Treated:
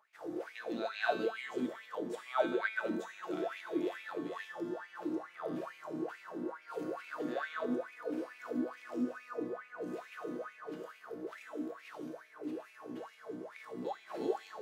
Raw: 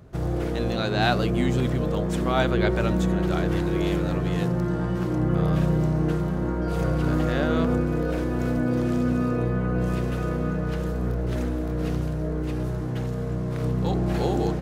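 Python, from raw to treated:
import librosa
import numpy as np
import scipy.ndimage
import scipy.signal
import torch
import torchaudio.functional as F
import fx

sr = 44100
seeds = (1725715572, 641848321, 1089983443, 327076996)

y = fx.highpass(x, sr, hz=120.0, slope=6)
y = fx.comb_fb(y, sr, f0_hz=220.0, decay_s=1.3, harmonics='all', damping=0.0, mix_pct=90)
y = fx.filter_lfo_highpass(y, sr, shape='sine', hz=2.3, low_hz=260.0, high_hz=2400.0, q=7.7)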